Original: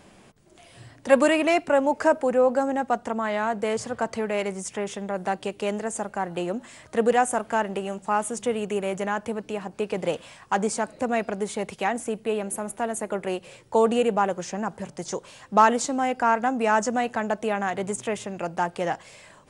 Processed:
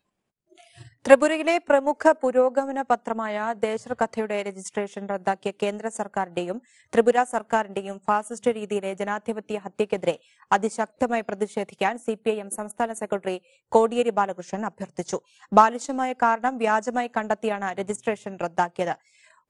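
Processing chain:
transient designer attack +8 dB, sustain −8 dB
noise reduction from a noise print of the clip's start 25 dB
level −2.5 dB

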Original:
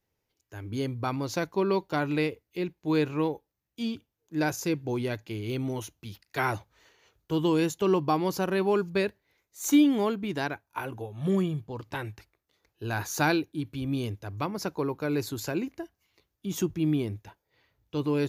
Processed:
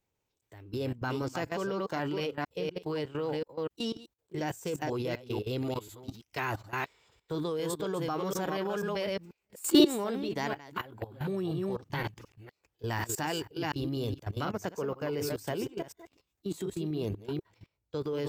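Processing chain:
delay that plays each chunk backwards 245 ms, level −6.5 dB
output level in coarse steps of 17 dB
formants moved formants +3 semitones
level +2 dB

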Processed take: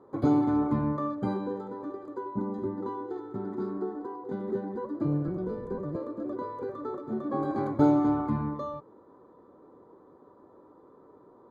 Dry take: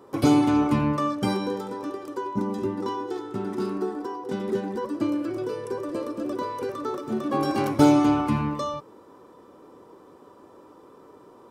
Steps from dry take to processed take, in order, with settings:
0:05.04–0:05.96: sub-octave generator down 1 octave, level +3 dB
moving average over 16 samples
level −4.5 dB

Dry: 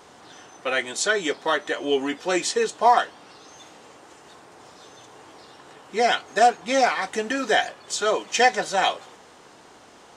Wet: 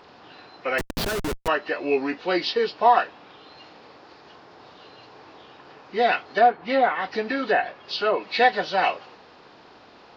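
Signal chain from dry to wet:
hearing-aid frequency compression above 1,800 Hz 1.5 to 1
0:00.78–0:01.48: comparator with hysteresis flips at −24.5 dBFS
0:06.25–0:08.24: treble cut that deepens with the level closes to 2,000 Hz, closed at −16.5 dBFS

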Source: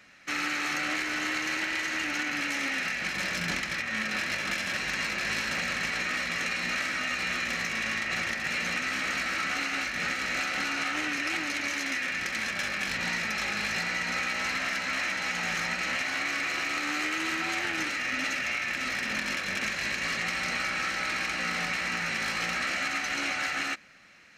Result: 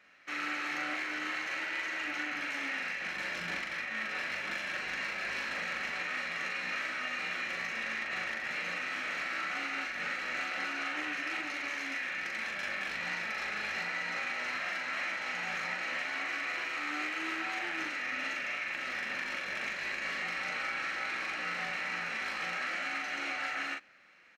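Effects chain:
bass and treble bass −11 dB, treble −10 dB
double-tracking delay 40 ms −3 dB
level −6 dB

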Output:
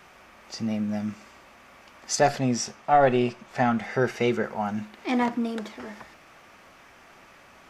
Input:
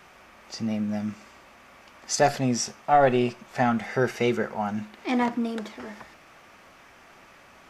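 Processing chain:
0:02.17–0:04.44: high-shelf EQ 10,000 Hz −8 dB

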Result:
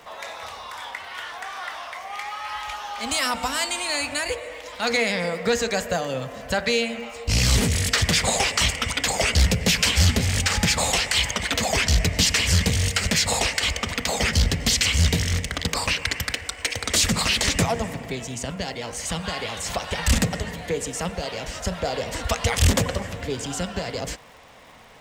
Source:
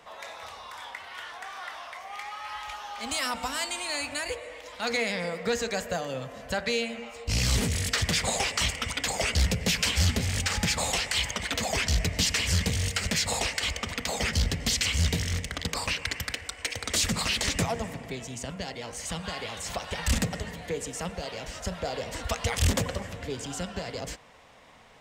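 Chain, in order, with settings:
surface crackle 250 per second −51 dBFS
level +6 dB

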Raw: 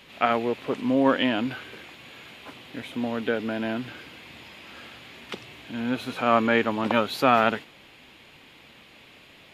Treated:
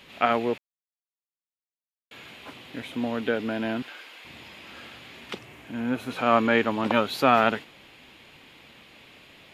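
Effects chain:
0:00.58–0:02.11: silence
0:03.82–0:04.25: high-pass filter 600 Hz 12 dB per octave
0:05.38–0:06.11: parametric band 3,900 Hz −8.5 dB 1 octave

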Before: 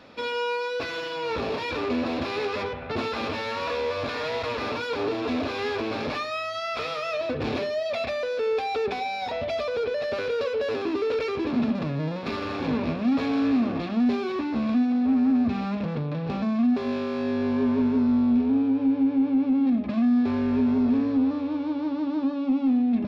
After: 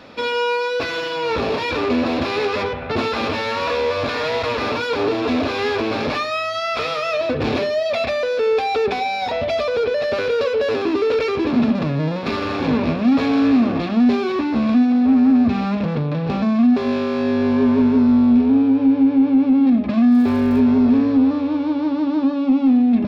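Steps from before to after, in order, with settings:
0:20.11–0:20.59: surface crackle 440 per second −44 dBFS
level +7.5 dB

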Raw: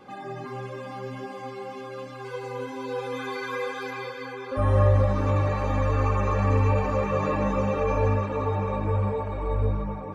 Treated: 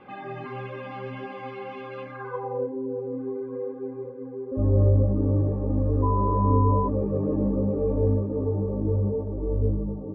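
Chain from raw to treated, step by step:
low-pass filter sweep 2,700 Hz → 350 Hz, 0:01.99–0:02.81
0:06.02–0:06.87: steady tone 1,000 Hz −25 dBFS
one half of a high-frequency compander decoder only

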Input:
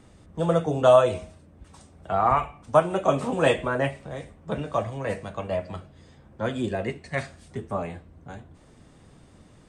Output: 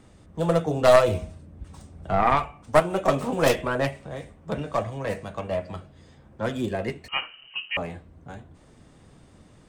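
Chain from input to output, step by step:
stylus tracing distortion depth 0.22 ms
0:01.08–0:02.23: low-shelf EQ 240 Hz +9 dB
0:07.08–0:07.77: voice inversion scrambler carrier 3,000 Hz

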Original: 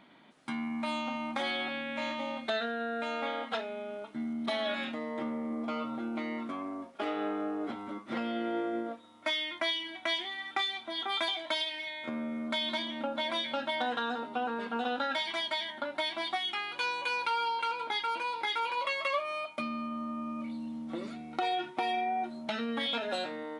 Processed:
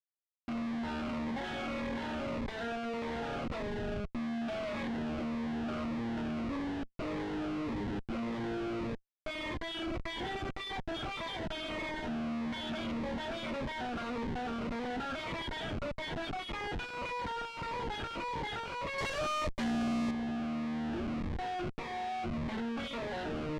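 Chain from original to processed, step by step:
comparator with hysteresis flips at −39.5 dBFS
low-pass filter 2,800 Hz 12 dB per octave
0:18.98–0:20.11: leveller curve on the samples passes 2
phaser whose notches keep moving one way falling 1.7 Hz

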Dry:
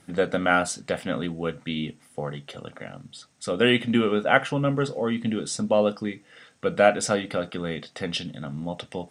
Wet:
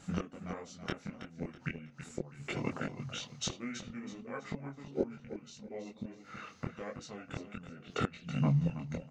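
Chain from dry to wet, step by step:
gate with flip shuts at −21 dBFS, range −25 dB
on a send: repeating echo 326 ms, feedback 37%, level −10.5 dB
on the sum: formants moved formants −5 semitones
multi-voice chorus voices 4, 1.4 Hz, delay 23 ms, depth 3 ms
level +5.5 dB

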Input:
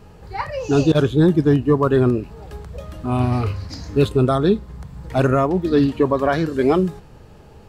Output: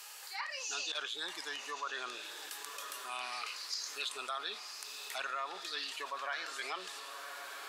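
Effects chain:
high-pass filter 1,000 Hz 12 dB per octave
treble cut that deepens with the level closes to 2,700 Hz, closed at −22.5 dBFS
first difference
on a send: feedback delay with all-pass diffusion 1,089 ms, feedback 43%, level −14 dB
on the sum: envelope flattener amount 50%
level +1.5 dB

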